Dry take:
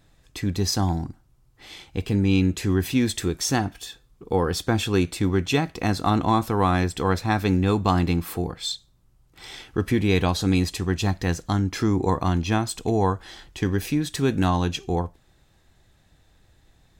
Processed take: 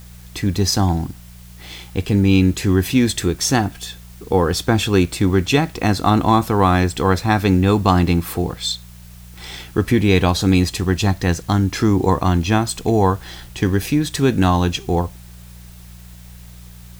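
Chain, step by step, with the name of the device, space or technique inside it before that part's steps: video cassette with head-switching buzz (buzz 60 Hz, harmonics 3, -46 dBFS; white noise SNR 30 dB); gain +6 dB

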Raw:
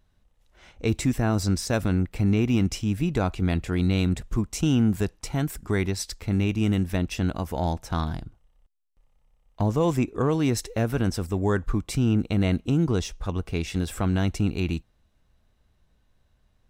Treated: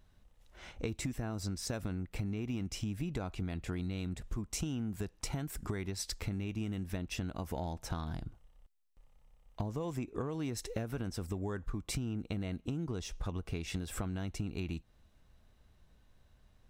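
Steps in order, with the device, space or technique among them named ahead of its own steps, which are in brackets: serial compression, leveller first (compressor 2:1, threshold -28 dBFS, peak gain reduction 6.5 dB; compressor 6:1, threshold -35 dBFS, peak gain reduction 11.5 dB); gain +1 dB

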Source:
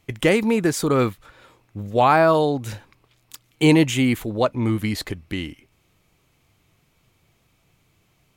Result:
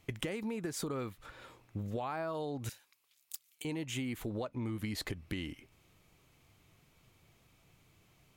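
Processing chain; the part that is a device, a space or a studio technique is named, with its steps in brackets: serial compression, peaks first (compressor, threshold -26 dBFS, peak gain reduction 14.5 dB; compressor 3:1, threshold -33 dBFS, peak gain reduction 8 dB); 2.69–3.65 differentiator; gain -3 dB

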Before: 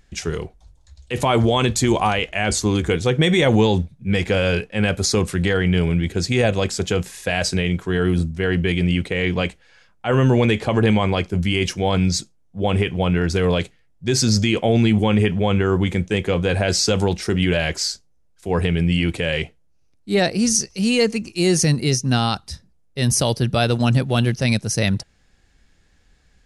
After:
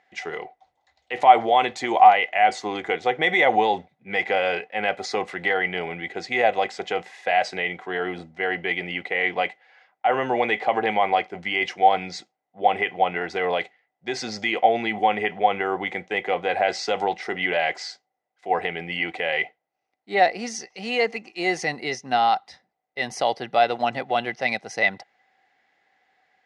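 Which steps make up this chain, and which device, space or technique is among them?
tin-can telephone (BPF 480–3100 Hz; small resonant body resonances 760/2000 Hz, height 16 dB, ringing for 40 ms); gain -2.5 dB

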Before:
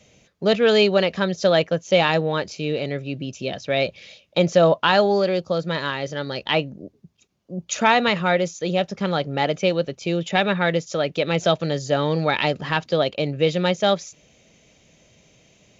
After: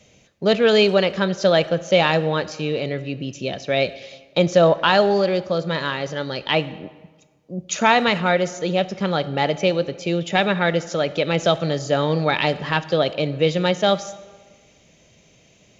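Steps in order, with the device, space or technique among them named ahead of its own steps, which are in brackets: saturated reverb return (on a send at -14 dB: reverb RT60 1.4 s, pre-delay 25 ms + soft clip -13 dBFS, distortion -16 dB); on the sum: gain +1 dB

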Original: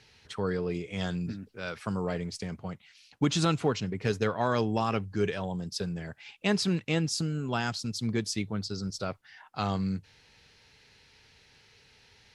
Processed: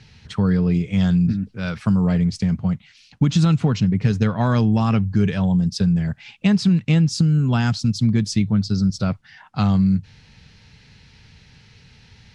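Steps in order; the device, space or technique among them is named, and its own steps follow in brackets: jukebox (LPF 7800 Hz 12 dB/oct; resonant low shelf 270 Hz +10 dB, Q 1.5; compressor 5:1, threshold -20 dBFS, peak gain reduction 7.5 dB); gain +6.5 dB

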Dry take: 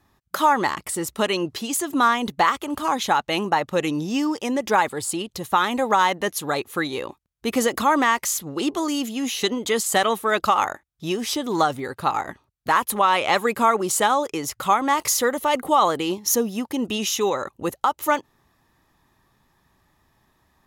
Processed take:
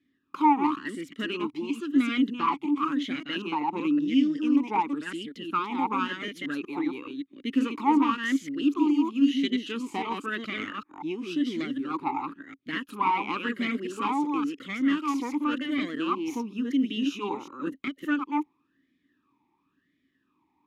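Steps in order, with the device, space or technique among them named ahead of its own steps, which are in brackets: reverse delay 0.19 s, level -3 dB; 17.34–17.82 bell 3100 Hz -5 dB 1.4 oct; talk box (tube stage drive 9 dB, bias 0.7; vowel sweep i-u 0.95 Hz); gain +7.5 dB

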